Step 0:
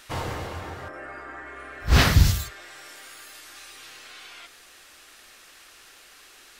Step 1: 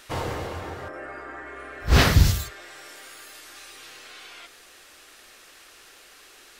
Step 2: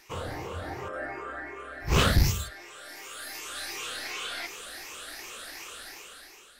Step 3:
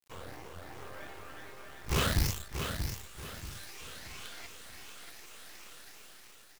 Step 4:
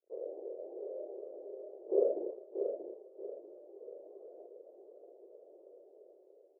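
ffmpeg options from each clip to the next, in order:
ffmpeg -i in.wav -af "equalizer=frequency=440:width=1.2:gain=4" out.wav
ffmpeg -i in.wav -af "afftfilt=real='re*pow(10,11/40*sin(2*PI*(0.75*log(max(b,1)*sr/1024/100)/log(2)-(2.7)*(pts-256)/sr)))':imag='im*pow(10,11/40*sin(2*PI*(0.75*log(max(b,1)*sr/1024/100)/log(2)-(2.7)*(pts-256)/sr)))':win_size=1024:overlap=0.75,aeval=exprs='clip(val(0),-1,0.168)':channel_layout=same,dynaudnorm=framelen=260:gausssize=7:maxgain=15dB,volume=-8dB" out.wav
ffmpeg -i in.wav -filter_complex "[0:a]acrusher=bits=5:dc=4:mix=0:aa=0.000001,asplit=2[link_01][link_02];[link_02]aecho=0:1:634|1268|1902|2536:0.447|0.156|0.0547|0.0192[link_03];[link_01][link_03]amix=inputs=2:normalize=0,volume=-7dB" out.wav
ffmpeg -i in.wav -af "asuperpass=centerf=470:order=8:qfactor=1.8,volume=10dB" out.wav

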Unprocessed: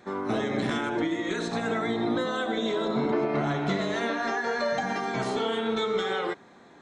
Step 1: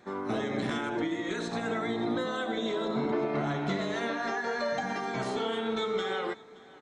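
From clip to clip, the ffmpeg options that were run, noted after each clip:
ffmpeg -i in.wav -af "aecho=1:1:573:0.0794,volume=-3.5dB" out.wav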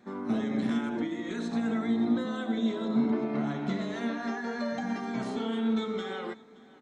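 ffmpeg -i in.wav -af "equalizer=frequency=230:width_type=o:width=0.44:gain=14,volume=-5dB" out.wav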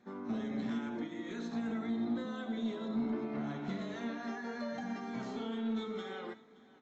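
ffmpeg -i in.wav -af "bandreject=frequency=327.3:width_type=h:width=4,bandreject=frequency=654.6:width_type=h:width=4,bandreject=frequency=981.9:width_type=h:width=4,bandreject=frequency=1309.2:width_type=h:width=4,bandreject=frequency=1636.5:width_type=h:width=4,bandreject=frequency=1963.8:width_type=h:width=4,bandreject=frequency=2291.1:width_type=h:width=4,bandreject=frequency=2618.4:width_type=h:width=4,bandreject=frequency=2945.7:width_type=h:width=4,bandreject=frequency=3273:width_type=h:width=4,bandreject=frequency=3600.3:width_type=h:width=4,bandreject=frequency=3927.6:width_type=h:width=4,bandreject=frequency=4254.9:width_type=h:width=4,bandreject=frequency=4582.2:width_type=h:width=4,bandreject=frequency=4909.5:width_type=h:width=4,bandreject=frequency=5236.8:width_type=h:width=4,bandreject=frequency=5564.1:width_type=h:width=4,bandreject=frequency=5891.4:width_type=h:width=4,bandreject=frequency=6218.7:width_type=h:width=4,bandreject=frequency=6546:width_type=h:width=4,bandreject=frequency=6873.3:width_type=h:width=4,bandreject=frequency=7200.6:width_type=h:width=4,bandreject=frequency=7527.9:width_type=h:width=4,asoftclip=type=tanh:threshold=-20dB,volume=-6.5dB" -ar 16000 -c:a aac -b:a 32k out.aac

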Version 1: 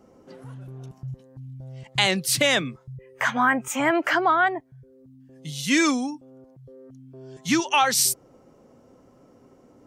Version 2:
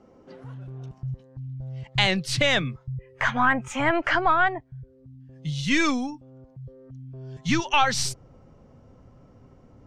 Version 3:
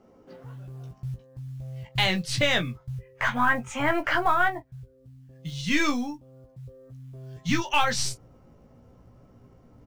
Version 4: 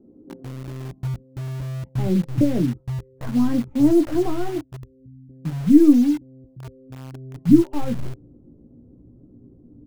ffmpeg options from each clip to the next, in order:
ffmpeg -i in.wav -af "aeval=exprs='0.631*(cos(1*acos(clip(val(0)/0.631,-1,1)))-cos(1*PI/2))+0.0251*(cos(4*acos(clip(val(0)/0.631,-1,1)))-cos(4*PI/2))':channel_layout=same,lowpass=4800,asubboost=boost=6.5:cutoff=120" out.wav
ffmpeg -i in.wav -af "asoftclip=type=hard:threshold=-8.5dB,acrusher=bits=8:mode=log:mix=0:aa=0.000001,aecho=1:1:17|42:0.531|0.141,volume=-3dB" out.wav
ffmpeg -i in.wav -filter_complex "[0:a]lowpass=frequency=310:width_type=q:width=3.4,asplit=2[link_01][link_02];[link_02]acrusher=bits=5:mix=0:aa=0.000001,volume=-5dB[link_03];[link_01][link_03]amix=inputs=2:normalize=0,volume=2dB" out.wav

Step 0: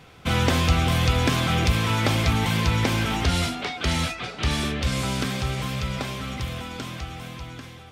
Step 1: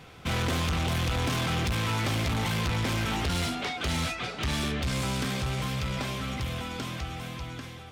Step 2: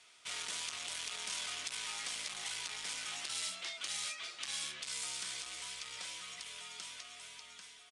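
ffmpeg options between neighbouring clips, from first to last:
ffmpeg -i in.wav -af "asoftclip=type=tanh:threshold=-25dB" out.wav
ffmpeg -i in.wav -af "afreqshift=-68,aderivative,aresample=22050,aresample=44100" out.wav

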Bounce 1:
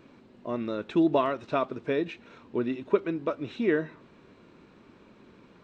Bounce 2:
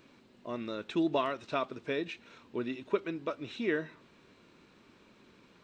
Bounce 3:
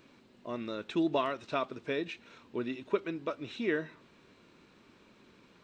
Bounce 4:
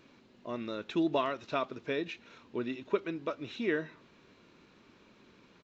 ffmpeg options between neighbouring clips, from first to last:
ffmpeg -i in.wav -af "highshelf=frequency=2100:gain=11,volume=-7dB" out.wav
ffmpeg -i in.wav -af anull out.wav
ffmpeg -i in.wav -af "aresample=16000,aresample=44100" out.wav

